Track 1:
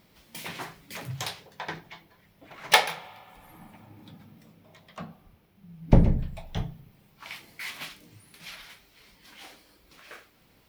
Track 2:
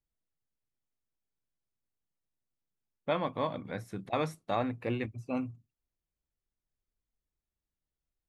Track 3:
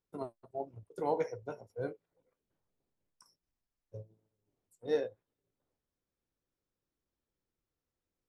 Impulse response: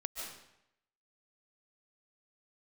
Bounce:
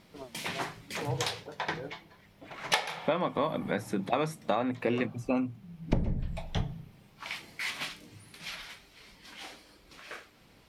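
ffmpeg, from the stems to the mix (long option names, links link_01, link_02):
-filter_complex "[0:a]lowpass=10000,bandreject=frequency=55.33:width_type=h:width=4,bandreject=frequency=110.66:width_type=h:width=4,bandreject=frequency=165.99:width_type=h:width=4,volume=2.5dB[link_01];[1:a]highpass=frequency=140:width=0.5412,highpass=frequency=140:width=1.3066,acontrast=89,volume=3dB[link_02];[2:a]volume=-5dB[link_03];[link_01][link_02][link_03]amix=inputs=3:normalize=0,acompressor=threshold=-25dB:ratio=6"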